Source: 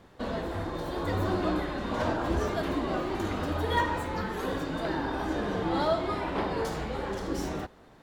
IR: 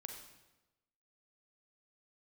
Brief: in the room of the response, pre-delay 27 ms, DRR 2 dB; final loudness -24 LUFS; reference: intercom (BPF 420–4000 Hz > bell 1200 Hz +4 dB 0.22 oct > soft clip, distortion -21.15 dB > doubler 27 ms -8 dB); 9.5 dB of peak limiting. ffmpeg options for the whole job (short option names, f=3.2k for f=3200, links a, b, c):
-filter_complex "[0:a]alimiter=limit=-23.5dB:level=0:latency=1,asplit=2[a][b];[1:a]atrim=start_sample=2205,adelay=27[c];[b][c]afir=irnorm=-1:irlink=0,volume=1.5dB[d];[a][d]amix=inputs=2:normalize=0,highpass=420,lowpass=4k,equalizer=f=1.2k:t=o:w=0.22:g=4,asoftclip=threshold=-24.5dB,asplit=2[e][f];[f]adelay=27,volume=-8dB[g];[e][g]amix=inputs=2:normalize=0,volume=9dB"